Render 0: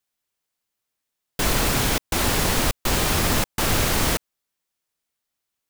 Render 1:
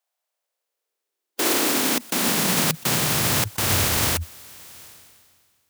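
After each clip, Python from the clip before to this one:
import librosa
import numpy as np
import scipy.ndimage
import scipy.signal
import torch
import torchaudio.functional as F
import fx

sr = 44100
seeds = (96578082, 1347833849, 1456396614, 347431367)

y = fx.spec_flatten(x, sr, power=0.52)
y = fx.filter_sweep_highpass(y, sr, from_hz=680.0, to_hz=84.0, start_s=0.16, end_s=3.88, q=3.5)
y = fx.sustainer(y, sr, db_per_s=31.0)
y = y * librosa.db_to_amplitude(-1.5)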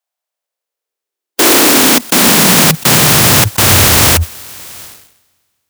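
y = fx.leveller(x, sr, passes=3)
y = y * librosa.db_to_amplitude(5.5)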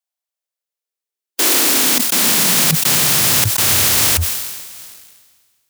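y = scipy.signal.sosfilt(scipy.signal.butter(2, 83.0, 'highpass', fs=sr, output='sos'), x)
y = fx.high_shelf(y, sr, hz=2000.0, db=8.5)
y = fx.sustainer(y, sr, db_per_s=38.0)
y = y * librosa.db_to_amplitude(-12.5)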